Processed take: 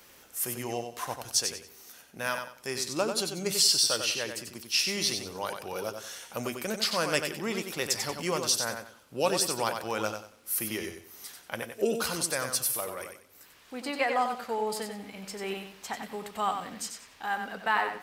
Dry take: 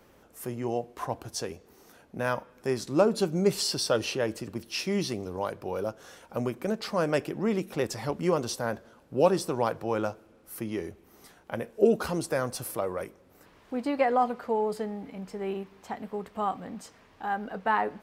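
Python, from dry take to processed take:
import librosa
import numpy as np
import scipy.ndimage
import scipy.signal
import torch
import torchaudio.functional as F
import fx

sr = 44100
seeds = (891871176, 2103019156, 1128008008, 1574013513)

p1 = fx.tilt_shelf(x, sr, db=-9.5, hz=1500.0)
p2 = fx.rider(p1, sr, range_db=4, speed_s=2.0)
y = p2 + fx.echo_feedback(p2, sr, ms=93, feedback_pct=27, wet_db=-6.5, dry=0)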